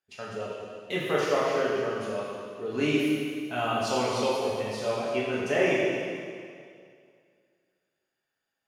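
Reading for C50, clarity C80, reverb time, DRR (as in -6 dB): -2.0 dB, 0.0 dB, 2.2 s, -7.5 dB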